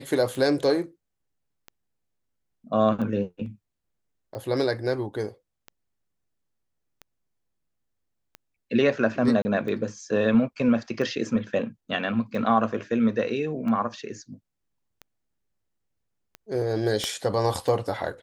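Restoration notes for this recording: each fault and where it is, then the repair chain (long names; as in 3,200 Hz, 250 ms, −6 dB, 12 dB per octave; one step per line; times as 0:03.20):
scratch tick 45 rpm
0:09.42–0:09.45: drop-out 30 ms
0:17.04: click −13 dBFS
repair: click removal
repair the gap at 0:09.42, 30 ms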